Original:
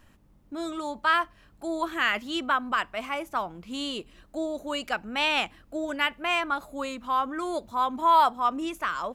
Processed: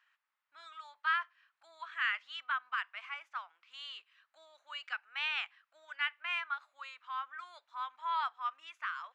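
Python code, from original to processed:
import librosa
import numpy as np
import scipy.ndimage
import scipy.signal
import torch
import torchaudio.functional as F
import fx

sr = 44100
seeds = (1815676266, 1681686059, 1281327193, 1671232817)

y = scipy.signal.sosfilt(scipy.signal.butter(4, 1400.0, 'highpass', fs=sr, output='sos'), x)
y = fx.spacing_loss(y, sr, db_at_10k=32)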